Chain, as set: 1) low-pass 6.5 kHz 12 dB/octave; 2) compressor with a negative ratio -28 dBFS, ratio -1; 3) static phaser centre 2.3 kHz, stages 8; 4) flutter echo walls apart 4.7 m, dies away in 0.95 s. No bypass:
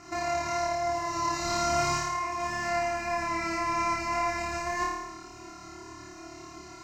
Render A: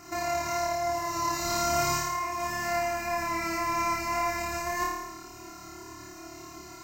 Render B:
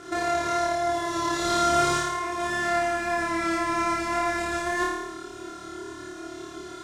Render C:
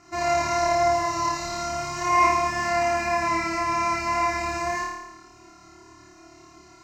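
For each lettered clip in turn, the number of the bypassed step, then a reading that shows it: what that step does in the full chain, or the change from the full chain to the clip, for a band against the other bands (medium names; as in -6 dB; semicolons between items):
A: 1, 8 kHz band +3.0 dB; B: 3, 250 Hz band +4.5 dB; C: 2, momentary loudness spread change -9 LU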